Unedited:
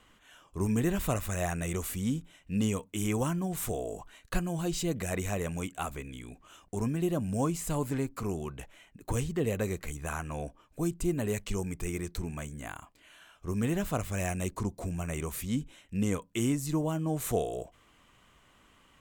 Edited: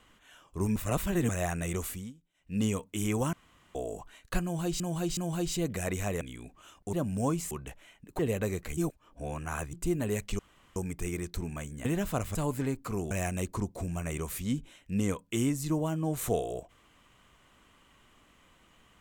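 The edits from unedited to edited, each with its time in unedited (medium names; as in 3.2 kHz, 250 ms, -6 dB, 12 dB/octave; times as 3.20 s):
0.76–1.29 s: reverse
1.85–2.62 s: dip -24 dB, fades 0.28 s
3.33–3.75 s: room tone
4.43–4.80 s: loop, 3 plays
5.47–6.07 s: delete
6.79–7.09 s: delete
7.67–8.43 s: move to 14.14 s
9.11–9.37 s: delete
9.95–10.91 s: reverse
11.57 s: insert room tone 0.37 s
12.66–13.64 s: delete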